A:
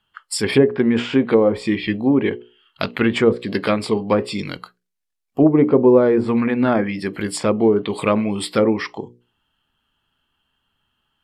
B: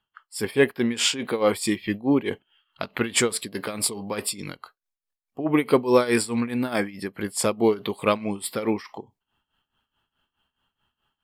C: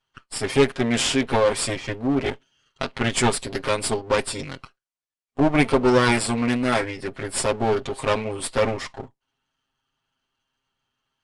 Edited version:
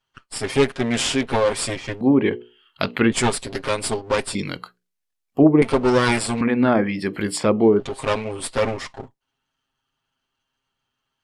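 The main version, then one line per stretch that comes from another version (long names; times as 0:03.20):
C
0:02.01–0:03.12: punch in from A
0:04.35–0:05.62: punch in from A
0:06.41–0:07.80: punch in from A
not used: B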